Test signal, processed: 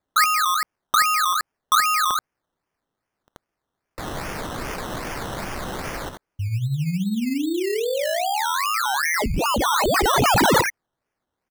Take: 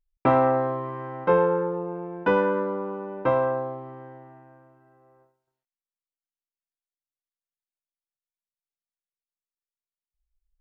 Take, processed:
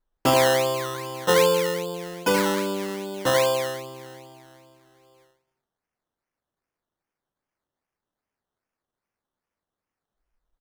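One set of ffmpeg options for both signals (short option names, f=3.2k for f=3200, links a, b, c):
-af "aemphasis=mode=production:type=cd,aecho=1:1:82:0.447,acrusher=samples=15:mix=1:aa=0.000001:lfo=1:lforange=9:lforate=2.5"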